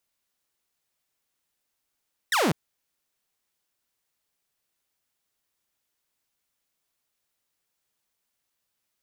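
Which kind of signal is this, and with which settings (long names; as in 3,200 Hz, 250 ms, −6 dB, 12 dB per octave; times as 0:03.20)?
single falling chirp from 2,000 Hz, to 130 Hz, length 0.20 s saw, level −17.5 dB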